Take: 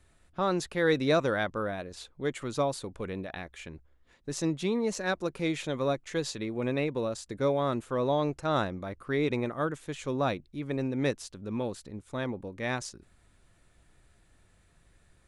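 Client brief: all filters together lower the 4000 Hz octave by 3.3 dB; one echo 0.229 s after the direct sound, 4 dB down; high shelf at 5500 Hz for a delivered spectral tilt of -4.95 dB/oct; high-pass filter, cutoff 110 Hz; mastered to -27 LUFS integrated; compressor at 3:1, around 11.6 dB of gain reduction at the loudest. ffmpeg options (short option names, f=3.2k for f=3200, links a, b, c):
-af "highpass=110,equalizer=f=4k:t=o:g=-6,highshelf=f=5.5k:g=6,acompressor=threshold=-37dB:ratio=3,aecho=1:1:229:0.631,volume=11.5dB"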